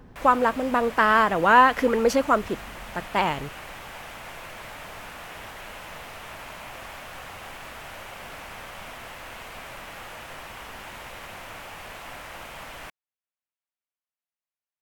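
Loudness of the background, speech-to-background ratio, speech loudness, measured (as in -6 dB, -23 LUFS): -39.5 LUFS, 18.5 dB, -21.0 LUFS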